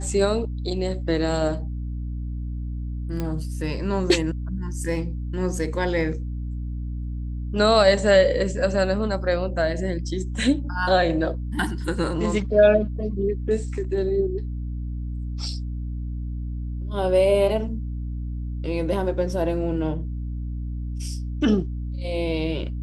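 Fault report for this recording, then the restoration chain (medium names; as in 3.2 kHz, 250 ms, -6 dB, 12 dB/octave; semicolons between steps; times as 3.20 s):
hum 60 Hz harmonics 5 -29 dBFS
3.20 s: pop -15 dBFS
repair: de-click; de-hum 60 Hz, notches 5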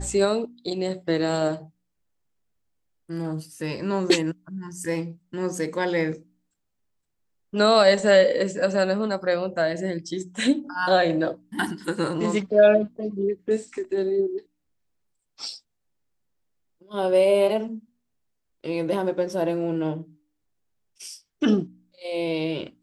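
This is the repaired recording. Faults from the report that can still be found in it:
nothing left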